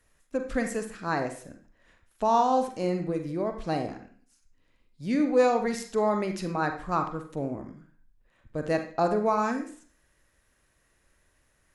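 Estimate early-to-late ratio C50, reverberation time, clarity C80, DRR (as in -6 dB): 7.5 dB, 0.45 s, 11.5 dB, 5.0 dB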